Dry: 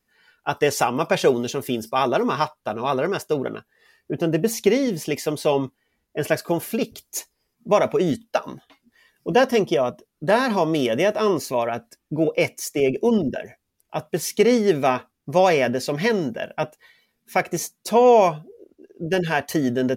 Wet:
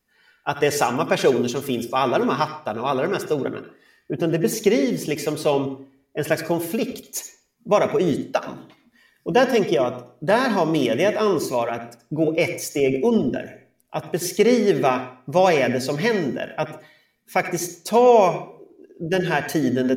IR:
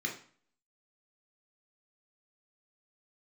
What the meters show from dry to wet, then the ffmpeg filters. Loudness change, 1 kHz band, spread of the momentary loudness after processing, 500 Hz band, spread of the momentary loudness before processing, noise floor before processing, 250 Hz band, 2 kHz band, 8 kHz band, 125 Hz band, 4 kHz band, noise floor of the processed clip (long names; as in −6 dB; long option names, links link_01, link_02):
+0.5 dB, 0.0 dB, 14 LU, +0.5 dB, 13 LU, −76 dBFS, +1.0 dB, +0.5 dB, +0.5 dB, +0.5 dB, +0.5 dB, −65 dBFS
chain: -filter_complex "[0:a]asplit=2[link_01][link_02];[1:a]atrim=start_sample=2205,adelay=74[link_03];[link_02][link_03]afir=irnorm=-1:irlink=0,volume=-13dB[link_04];[link_01][link_04]amix=inputs=2:normalize=0"